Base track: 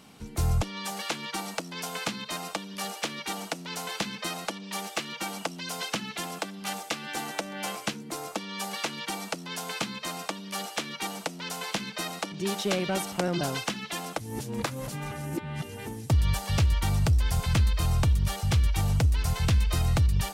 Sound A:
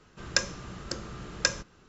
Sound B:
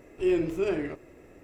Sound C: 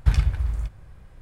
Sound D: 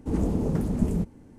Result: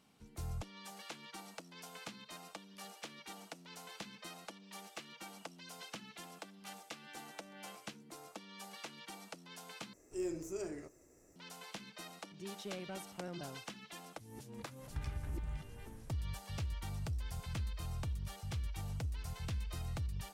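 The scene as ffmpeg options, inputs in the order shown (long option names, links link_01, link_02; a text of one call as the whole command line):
ffmpeg -i bed.wav -i cue0.wav -i cue1.wav -i cue2.wav -filter_complex "[0:a]volume=-16.5dB[link_01];[2:a]highshelf=frequency=4500:width_type=q:width=3:gain=12.5[link_02];[3:a]acompressor=threshold=-30dB:ratio=6:attack=3.2:release=140:knee=1:detection=peak[link_03];[link_01]asplit=2[link_04][link_05];[link_04]atrim=end=9.934[link_06];[link_02]atrim=end=1.43,asetpts=PTS-STARTPTS,volume=-14dB[link_07];[link_05]atrim=start=11.356[link_08];[link_03]atrim=end=1.21,asetpts=PTS-STARTPTS,volume=-7dB,afade=type=in:duration=0.004:curve=hsin,afade=type=out:start_time=1.206:duration=0.004:curve=hsin,adelay=14900[link_09];[link_06][link_07]acrossfade=duration=0.004:curve1=hsin:curve2=hsin[link_10];[link_10][link_08]acrossfade=duration=0.004:curve1=hsin:curve2=hsin[link_11];[link_11][link_09]amix=inputs=2:normalize=0" out.wav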